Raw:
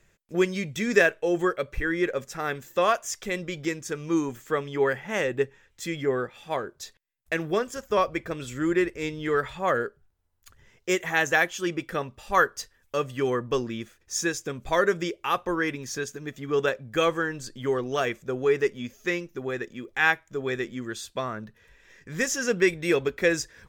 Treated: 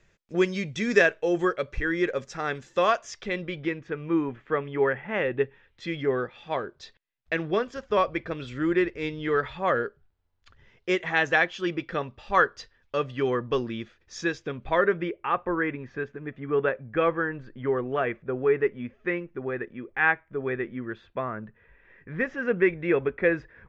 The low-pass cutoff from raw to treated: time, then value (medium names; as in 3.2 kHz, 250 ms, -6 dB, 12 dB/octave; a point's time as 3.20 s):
low-pass 24 dB/octave
2.85 s 6.2 kHz
3.92 s 2.7 kHz
5.08 s 2.7 kHz
5.99 s 4.5 kHz
14.23 s 4.5 kHz
15.20 s 2.3 kHz